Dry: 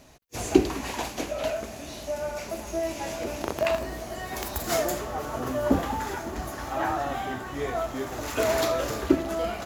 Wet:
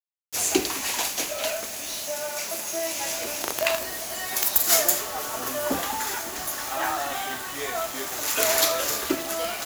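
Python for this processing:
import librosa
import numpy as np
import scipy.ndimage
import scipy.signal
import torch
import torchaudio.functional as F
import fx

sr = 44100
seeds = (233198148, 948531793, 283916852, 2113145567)

y = fx.tilt_eq(x, sr, slope=4.0)
y = fx.quant_dither(y, sr, seeds[0], bits=6, dither='none')
y = fx.highpass(y, sr, hz=100.0, slope=12, at=(2.04, 2.97))
y = F.gain(torch.from_numpy(y), 1.0).numpy()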